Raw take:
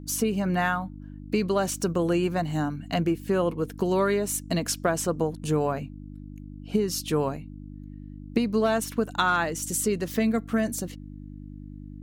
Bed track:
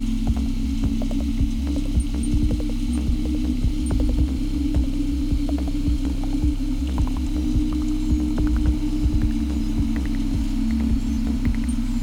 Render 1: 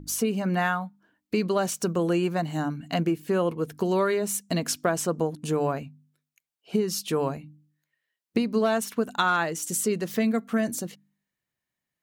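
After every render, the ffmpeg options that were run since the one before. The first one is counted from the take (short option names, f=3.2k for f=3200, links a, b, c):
-af "bandreject=f=50:t=h:w=4,bandreject=f=100:t=h:w=4,bandreject=f=150:t=h:w=4,bandreject=f=200:t=h:w=4,bandreject=f=250:t=h:w=4,bandreject=f=300:t=h:w=4"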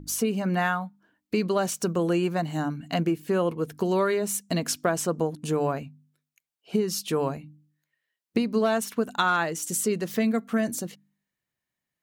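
-af anull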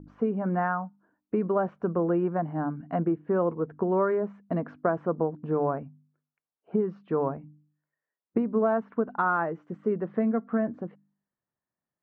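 -af "lowpass=f=1.4k:w=0.5412,lowpass=f=1.4k:w=1.3066,lowshelf=f=130:g=-6.5"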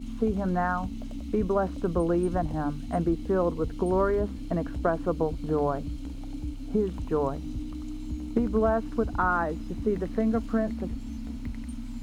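-filter_complex "[1:a]volume=-13.5dB[a];[0:a][a]amix=inputs=2:normalize=0"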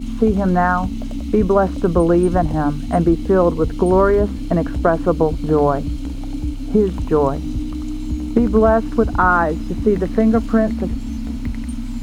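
-af "volume=11dB,alimiter=limit=-3dB:level=0:latency=1"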